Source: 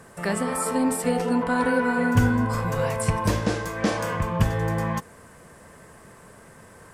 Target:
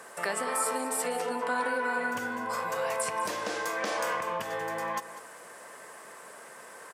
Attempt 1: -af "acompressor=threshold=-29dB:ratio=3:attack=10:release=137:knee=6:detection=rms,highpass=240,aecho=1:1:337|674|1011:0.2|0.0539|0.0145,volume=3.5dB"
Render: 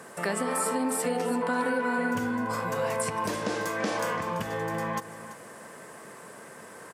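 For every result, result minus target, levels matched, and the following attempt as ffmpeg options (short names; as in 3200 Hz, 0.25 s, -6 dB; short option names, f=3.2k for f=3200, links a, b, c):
echo 0.14 s late; 250 Hz band +8.0 dB
-af "acompressor=threshold=-29dB:ratio=3:attack=10:release=137:knee=6:detection=rms,highpass=240,aecho=1:1:197|394|591:0.2|0.0539|0.0145,volume=3.5dB"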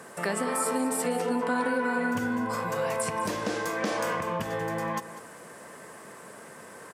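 250 Hz band +8.0 dB
-af "acompressor=threshold=-29dB:ratio=3:attack=10:release=137:knee=6:detection=rms,highpass=520,aecho=1:1:197|394|591:0.2|0.0539|0.0145,volume=3.5dB"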